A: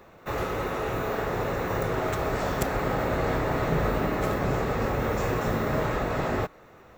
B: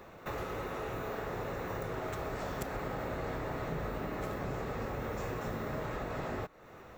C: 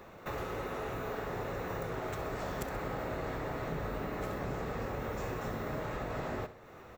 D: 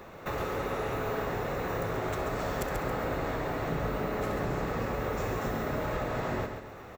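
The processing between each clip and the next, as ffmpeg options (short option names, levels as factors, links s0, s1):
-af "acompressor=threshold=0.01:ratio=2.5"
-af "aecho=1:1:65|130|195|260|325:0.211|0.101|0.0487|0.0234|0.0112"
-af "aecho=1:1:137|274|411|548|685:0.447|0.179|0.0715|0.0286|0.0114,volume=1.68"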